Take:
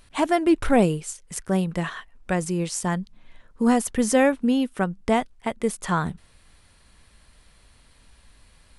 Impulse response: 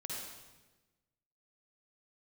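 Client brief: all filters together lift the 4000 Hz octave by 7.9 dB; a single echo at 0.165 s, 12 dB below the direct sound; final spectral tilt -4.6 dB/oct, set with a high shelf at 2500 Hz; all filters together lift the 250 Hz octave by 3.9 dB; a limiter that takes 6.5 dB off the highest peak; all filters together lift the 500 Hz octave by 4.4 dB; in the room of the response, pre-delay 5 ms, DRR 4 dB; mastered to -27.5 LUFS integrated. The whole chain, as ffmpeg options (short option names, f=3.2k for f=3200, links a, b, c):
-filter_complex "[0:a]equalizer=f=250:t=o:g=3.5,equalizer=f=500:t=o:g=4,highshelf=f=2.5k:g=7.5,equalizer=f=4k:t=o:g=4,alimiter=limit=-8.5dB:level=0:latency=1,aecho=1:1:165:0.251,asplit=2[a][b];[1:a]atrim=start_sample=2205,adelay=5[c];[b][c]afir=irnorm=-1:irlink=0,volume=-3.5dB[d];[a][d]amix=inputs=2:normalize=0,volume=-8dB"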